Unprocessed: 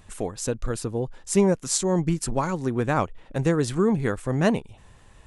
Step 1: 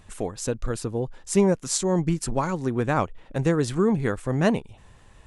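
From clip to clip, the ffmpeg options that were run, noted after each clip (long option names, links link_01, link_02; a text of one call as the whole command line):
ffmpeg -i in.wav -af "highshelf=frequency=9800:gain=-4" out.wav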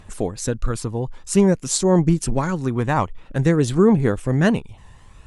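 ffmpeg -i in.wav -af "aphaser=in_gain=1:out_gain=1:delay=1.1:decay=0.38:speed=0.51:type=triangular,volume=3dB" out.wav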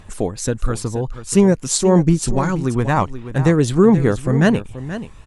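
ffmpeg -i in.wav -af "aecho=1:1:480:0.237,volume=2.5dB" out.wav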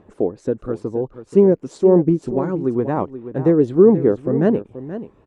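ffmpeg -i in.wav -af "bandpass=frequency=380:width_type=q:width=1.6:csg=0,volume=4dB" out.wav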